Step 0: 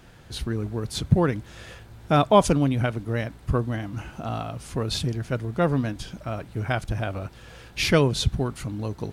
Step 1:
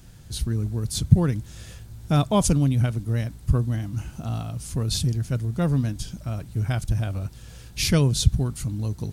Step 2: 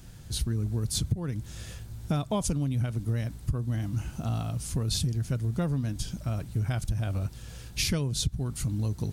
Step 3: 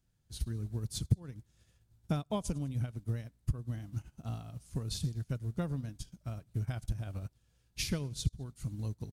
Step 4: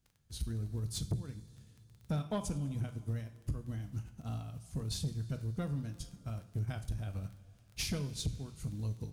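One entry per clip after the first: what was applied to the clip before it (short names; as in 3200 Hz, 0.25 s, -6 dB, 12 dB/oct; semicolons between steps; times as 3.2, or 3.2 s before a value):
tone controls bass +13 dB, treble +15 dB; gain -7.5 dB
compressor 16:1, threshold -24 dBFS, peak gain reduction 18 dB
feedback echo 0.101 s, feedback 47%, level -22 dB; upward expander 2.5:1, over -41 dBFS
crackle 16/s -46 dBFS; two-slope reverb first 0.37 s, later 2.7 s, from -17 dB, DRR 8 dB; soft clip -27.5 dBFS, distortion -12 dB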